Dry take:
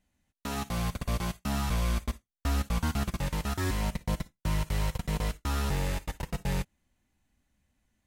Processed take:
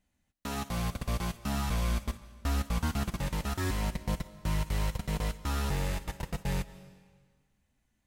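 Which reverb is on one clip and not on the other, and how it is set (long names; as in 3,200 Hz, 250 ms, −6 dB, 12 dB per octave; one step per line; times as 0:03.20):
comb and all-pass reverb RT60 1.6 s, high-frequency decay 0.95×, pre-delay 110 ms, DRR 16.5 dB
level −1.5 dB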